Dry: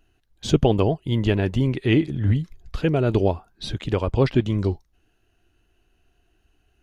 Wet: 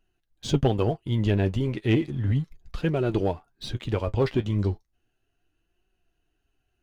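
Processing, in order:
flanger 0.34 Hz, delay 5.2 ms, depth 5.3 ms, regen +50%
leveller curve on the samples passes 1
level −3.5 dB

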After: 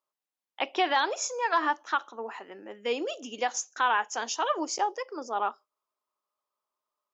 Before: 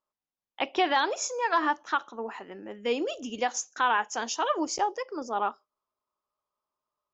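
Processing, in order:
Bessel high-pass filter 340 Hz, order 2

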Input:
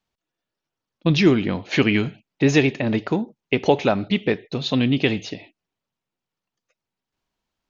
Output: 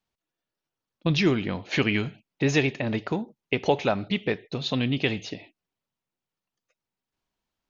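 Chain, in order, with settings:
dynamic equaliser 280 Hz, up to −4 dB, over −27 dBFS, Q 1
level −3.5 dB

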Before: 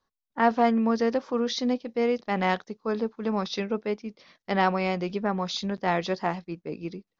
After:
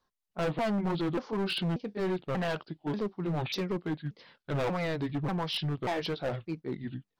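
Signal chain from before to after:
pitch shifter swept by a sawtooth −7.5 semitones, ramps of 587 ms
hard clipping −27 dBFS, distortion −6 dB

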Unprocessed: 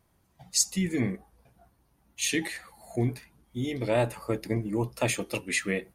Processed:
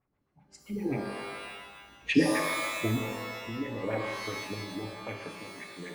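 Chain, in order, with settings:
source passing by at 0:02.06, 32 m/s, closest 13 metres
auto-filter low-pass sine 7.7 Hz 270–2,400 Hz
reverb with rising layers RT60 1.3 s, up +12 semitones, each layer −2 dB, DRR 3.5 dB
level +2 dB

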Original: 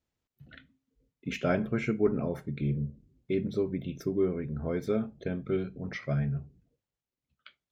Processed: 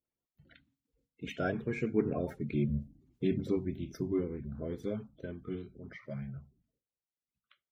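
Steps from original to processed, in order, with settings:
spectral magnitudes quantised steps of 30 dB
source passing by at 0:02.91, 12 m/s, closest 12 metres

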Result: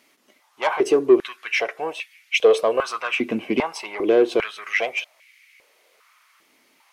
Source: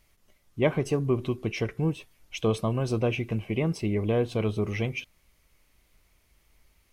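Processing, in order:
mid-hump overdrive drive 18 dB, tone 5,500 Hz, clips at −9.5 dBFS
high-pass on a step sequencer 2.5 Hz 260–2,200 Hz
level −2 dB

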